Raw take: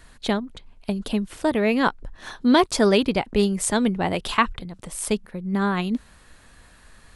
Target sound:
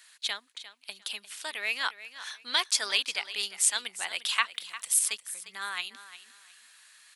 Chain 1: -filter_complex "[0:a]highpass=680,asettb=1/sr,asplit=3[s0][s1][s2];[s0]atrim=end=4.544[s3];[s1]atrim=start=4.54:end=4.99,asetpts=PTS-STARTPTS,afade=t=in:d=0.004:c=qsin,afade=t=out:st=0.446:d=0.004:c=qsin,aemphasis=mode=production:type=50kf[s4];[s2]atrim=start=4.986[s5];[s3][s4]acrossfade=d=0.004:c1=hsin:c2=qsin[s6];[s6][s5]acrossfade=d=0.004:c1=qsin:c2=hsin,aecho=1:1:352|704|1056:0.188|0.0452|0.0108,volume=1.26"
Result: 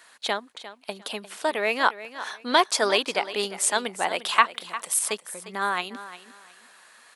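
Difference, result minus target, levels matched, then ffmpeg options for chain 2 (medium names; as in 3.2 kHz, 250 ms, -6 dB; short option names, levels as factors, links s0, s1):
500 Hz band +15.5 dB
-filter_complex "[0:a]highpass=2300,asettb=1/sr,asplit=3[s0][s1][s2];[s0]atrim=end=4.544[s3];[s1]atrim=start=4.54:end=4.99,asetpts=PTS-STARTPTS,afade=t=in:d=0.004:c=qsin,afade=t=out:st=0.446:d=0.004:c=qsin,aemphasis=mode=production:type=50kf[s4];[s2]atrim=start=4.986[s5];[s3][s4]acrossfade=d=0.004:c1=hsin:c2=qsin[s6];[s6][s5]acrossfade=d=0.004:c1=qsin:c2=hsin,aecho=1:1:352|704|1056:0.188|0.0452|0.0108,volume=1.26"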